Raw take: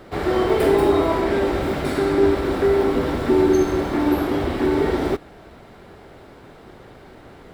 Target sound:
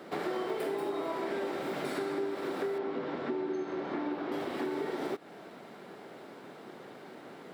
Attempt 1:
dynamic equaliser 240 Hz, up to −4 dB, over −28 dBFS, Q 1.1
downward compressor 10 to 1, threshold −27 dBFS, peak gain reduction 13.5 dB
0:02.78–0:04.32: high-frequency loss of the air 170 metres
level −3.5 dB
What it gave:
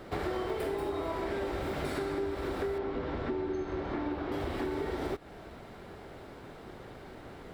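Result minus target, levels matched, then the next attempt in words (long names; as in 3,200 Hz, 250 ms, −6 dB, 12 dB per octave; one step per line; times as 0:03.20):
125 Hz band +9.5 dB
dynamic equaliser 240 Hz, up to −4 dB, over −28 dBFS, Q 1.1
downward compressor 10 to 1, threshold −27 dBFS, peak gain reduction 13.5 dB
high-pass filter 170 Hz 24 dB per octave
0:02.78–0:04.32: high-frequency loss of the air 170 metres
level −3.5 dB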